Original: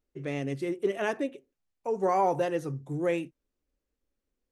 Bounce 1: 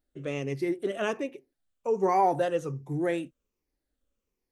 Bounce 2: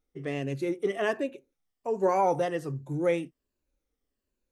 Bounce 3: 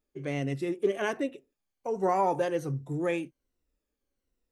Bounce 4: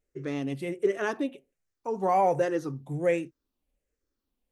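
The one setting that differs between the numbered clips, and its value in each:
drifting ripple filter, ripples per octave: 0.79, 1.4, 2, 0.51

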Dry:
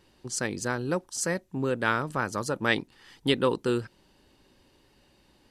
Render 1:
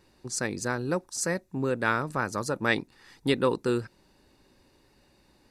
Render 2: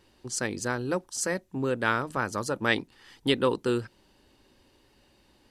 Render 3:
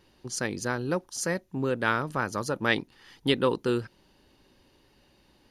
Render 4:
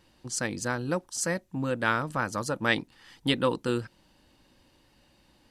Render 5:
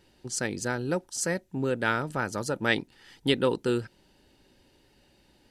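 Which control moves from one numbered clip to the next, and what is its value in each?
band-stop, frequency: 3.1 kHz, 160 Hz, 7.9 kHz, 400 Hz, 1.1 kHz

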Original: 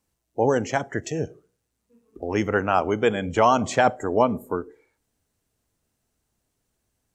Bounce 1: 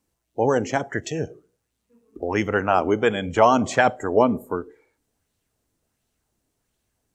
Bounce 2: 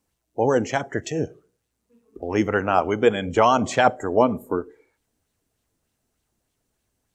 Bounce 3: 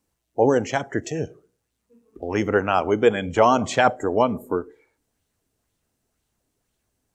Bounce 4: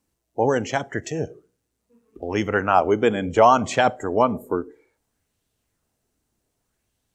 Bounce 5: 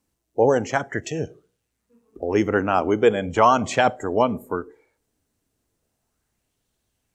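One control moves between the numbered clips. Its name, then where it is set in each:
sweeping bell, rate: 1.4 Hz, 3.3 Hz, 2 Hz, 0.64 Hz, 0.37 Hz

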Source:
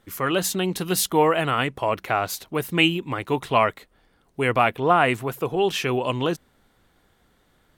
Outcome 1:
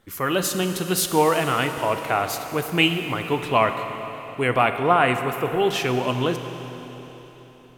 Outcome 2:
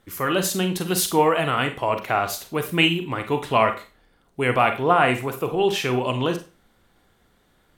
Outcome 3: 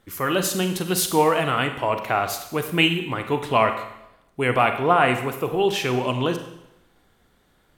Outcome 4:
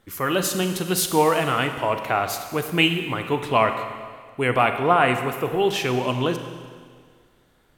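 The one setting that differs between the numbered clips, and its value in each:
Schroeder reverb, RT60: 4 s, 0.32 s, 0.85 s, 1.8 s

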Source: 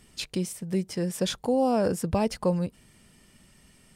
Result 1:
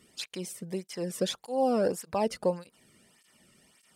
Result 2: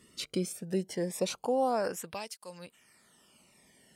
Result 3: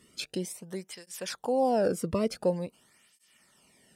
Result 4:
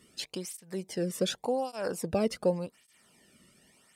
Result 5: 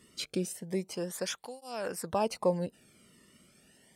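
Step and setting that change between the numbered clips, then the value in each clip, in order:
cancelling through-zero flanger, nulls at: 1.7 Hz, 0.21 Hz, 0.47 Hz, 0.87 Hz, 0.31 Hz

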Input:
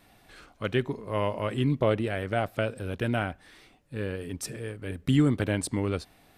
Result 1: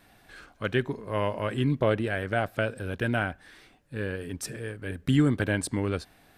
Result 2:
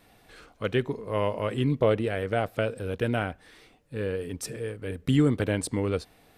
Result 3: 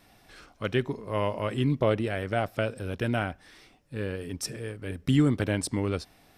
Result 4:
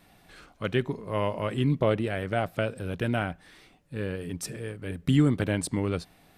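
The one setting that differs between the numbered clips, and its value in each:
peaking EQ, frequency: 1.6 kHz, 470 Hz, 5.4 kHz, 170 Hz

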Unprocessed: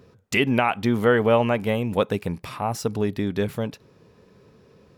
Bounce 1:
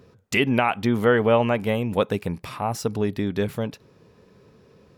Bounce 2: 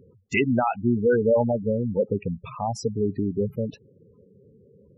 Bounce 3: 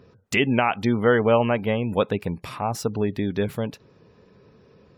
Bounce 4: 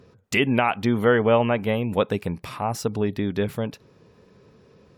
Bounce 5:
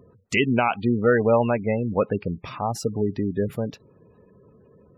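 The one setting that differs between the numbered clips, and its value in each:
spectral gate, under each frame's peak: -60 dB, -10 dB, -35 dB, -45 dB, -20 dB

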